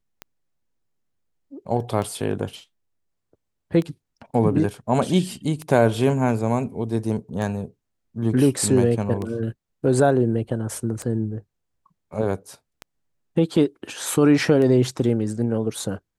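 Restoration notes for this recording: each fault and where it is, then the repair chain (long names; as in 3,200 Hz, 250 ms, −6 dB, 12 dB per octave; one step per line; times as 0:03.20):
scratch tick 33 1/3 rpm −17 dBFS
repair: click removal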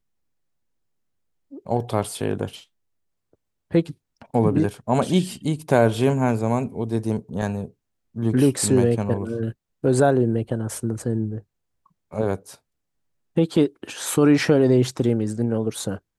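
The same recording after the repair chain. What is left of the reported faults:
none of them is left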